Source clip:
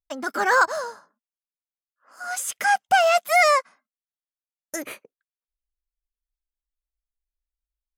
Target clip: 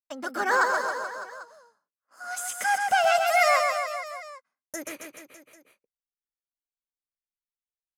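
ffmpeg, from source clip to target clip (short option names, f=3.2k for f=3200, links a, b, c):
-af "agate=range=-23dB:threshold=-53dB:ratio=16:detection=peak,aecho=1:1:130|273|430.3|603.3|793.7:0.631|0.398|0.251|0.158|0.1,volume=-5dB"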